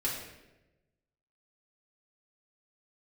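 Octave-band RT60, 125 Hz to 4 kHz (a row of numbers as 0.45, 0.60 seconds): 1.5, 1.2, 1.2, 0.90, 0.90, 0.75 seconds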